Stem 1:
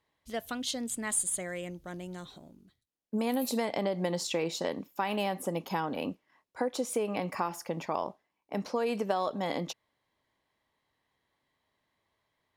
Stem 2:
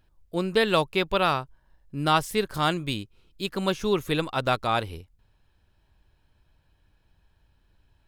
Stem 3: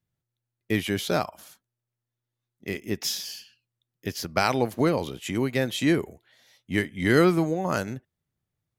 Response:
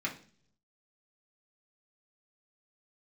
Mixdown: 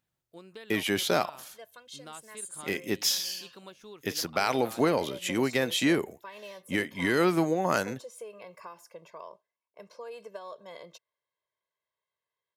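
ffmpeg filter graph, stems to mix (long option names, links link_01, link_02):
-filter_complex "[0:a]aecho=1:1:1.9:0.99,adelay=1250,volume=-14.5dB[link_01];[1:a]acompressor=threshold=-25dB:ratio=6,volume=-16dB[link_02];[2:a]alimiter=limit=-14dB:level=0:latency=1:release=139,aeval=exprs='0.2*(cos(1*acos(clip(val(0)/0.2,-1,1)))-cos(1*PI/2))+0.0141*(cos(2*acos(clip(val(0)/0.2,-1,1)))-cos(2*PI/2))':channel_layout=same,volume=2.5dB[link_03];[link_01][link_02][link_03]amix=inputs=3:normalize=0,highpass=frequency=320:poles=1"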